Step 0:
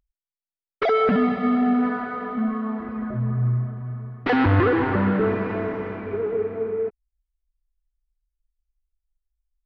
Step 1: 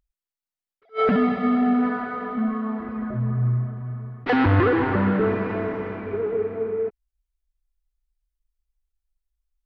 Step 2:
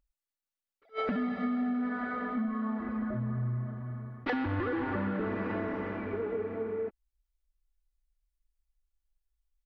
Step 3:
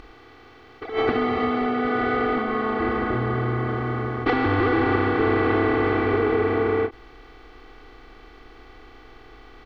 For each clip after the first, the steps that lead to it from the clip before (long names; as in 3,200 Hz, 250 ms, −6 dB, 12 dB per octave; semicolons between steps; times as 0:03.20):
level that may rise only so fast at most 380 dB per second
comb filter 3.5 ms, depth 42%; downward compressor 6 to 1, threshold −25 dBFS, peak gain reduction 11.5 dB; level −4 dB
compressor on every frequency bin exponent 0.4; comb filter 2.6 ms, depth 79%; every ending faded ahead of time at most 350 dB per second; level +4.5 dB